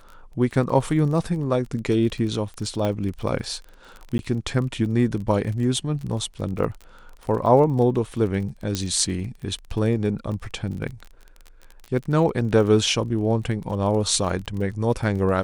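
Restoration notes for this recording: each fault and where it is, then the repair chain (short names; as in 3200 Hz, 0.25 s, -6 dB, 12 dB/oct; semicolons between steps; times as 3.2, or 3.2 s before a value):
crackle 29/s -31 dBFS
2.85 pop -13 dBFS
4.18–4.19 gap 11 ms
8.75 pop -10 dBFS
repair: de-click; interpolate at 4.18, 11 ms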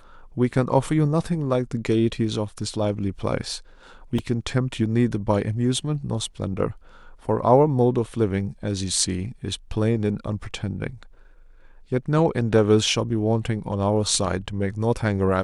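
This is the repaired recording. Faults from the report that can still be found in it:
none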